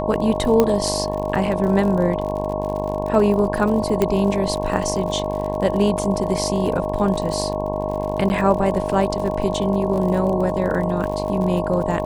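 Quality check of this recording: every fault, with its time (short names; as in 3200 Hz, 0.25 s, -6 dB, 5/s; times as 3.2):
buzz 50 Hz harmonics 22 -26 dBFS
crackle 53/s -27 dBFS
tone 620 Hz -25 dBFS
0.6 pop -4 dBFS
4.02 pop -6 dBFS
8.29–8.3 gap 9.9 ms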